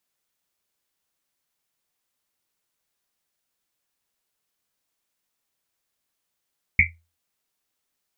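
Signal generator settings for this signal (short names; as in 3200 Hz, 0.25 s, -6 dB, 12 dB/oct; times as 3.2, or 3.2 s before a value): Risset drum, pitch 83 Hz, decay 0.32 s, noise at 2200 Hz, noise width 360 Hz, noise 70%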